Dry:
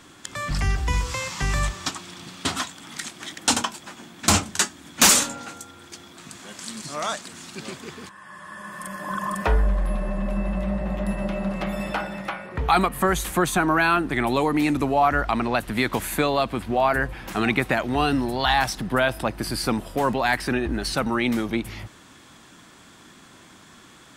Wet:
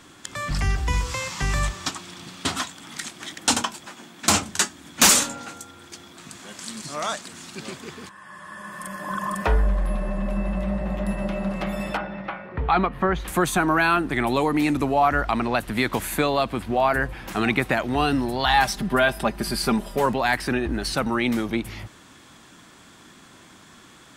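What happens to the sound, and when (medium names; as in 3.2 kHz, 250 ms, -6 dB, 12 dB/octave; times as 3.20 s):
3.86–4.42 s: high-pass 180 Hz 6 dB/octave
11.97–13.28 s: distance through air 280 m
18.53–20.06 s: comb 5 ms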